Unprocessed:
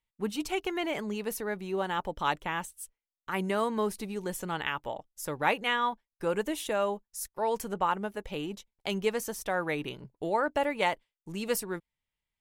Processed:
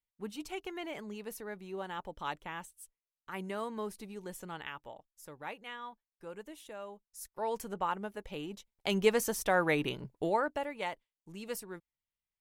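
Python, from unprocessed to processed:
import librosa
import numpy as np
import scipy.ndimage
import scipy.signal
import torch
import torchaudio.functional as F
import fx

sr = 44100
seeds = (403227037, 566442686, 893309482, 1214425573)

y = fx.gain(x, sr, db=fx.line((4.45, -9.0), (5.51, -16.0), (6.92, -16.0), (7.35, -5.5), (8.5, -5.5), (9.03, 2.5), (10.18, 2.5), (10.67, -9.5)))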